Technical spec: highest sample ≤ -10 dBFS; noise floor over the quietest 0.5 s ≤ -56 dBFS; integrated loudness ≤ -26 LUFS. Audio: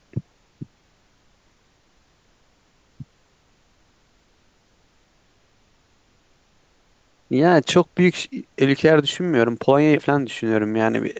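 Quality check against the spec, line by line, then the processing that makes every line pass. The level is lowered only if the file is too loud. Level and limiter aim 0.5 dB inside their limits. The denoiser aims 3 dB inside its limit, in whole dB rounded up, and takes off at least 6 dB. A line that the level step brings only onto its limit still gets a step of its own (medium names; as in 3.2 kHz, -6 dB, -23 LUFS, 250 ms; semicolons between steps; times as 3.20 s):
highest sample -3.5 dBFS: fail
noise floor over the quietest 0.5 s -61 dBFS: pass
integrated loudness -19.0 LUFS: fail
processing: trim -7.5 dB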